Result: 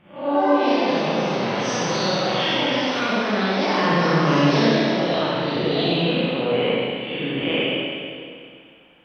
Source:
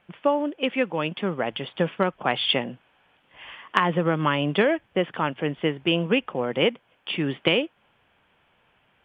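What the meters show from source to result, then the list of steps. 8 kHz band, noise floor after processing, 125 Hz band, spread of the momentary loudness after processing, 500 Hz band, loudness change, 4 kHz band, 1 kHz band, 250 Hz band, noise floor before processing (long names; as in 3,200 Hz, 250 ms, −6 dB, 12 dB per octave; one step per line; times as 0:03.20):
can't be measured, −48 dBFS, +5.0 dB, 7 LU, +4.5 dB, +4.0 dB, +4.5 dB, +5.5 dB, +5.5 dB, −65 dBFS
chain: spectrum smeared in time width 188 ms
delay with pitch and tempo change per echo 160 ms, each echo +5 semitones, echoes 2
four-comb reverb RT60 2.3 s, combs from 31 ms, DRR −6 dB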